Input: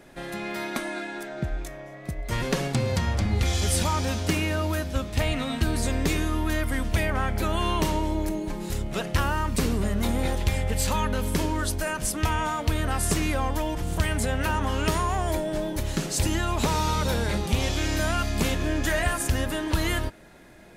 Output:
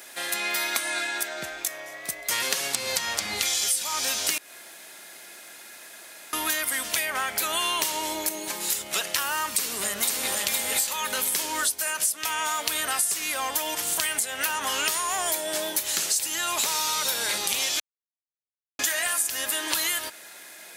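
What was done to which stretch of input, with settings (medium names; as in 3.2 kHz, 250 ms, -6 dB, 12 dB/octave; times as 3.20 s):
4.38–6.33 s: room tone
9.54–10.42 s: echo throw 510 ms, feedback 25%, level -0.5 dB
17.80–18.79 s: mute
whole clip: high-pass 440 Hz 6 dB/octave; tilt EQ +4.5 dB/octave; compression 10:1, threshold -27 dBFS; trim +4.5 dB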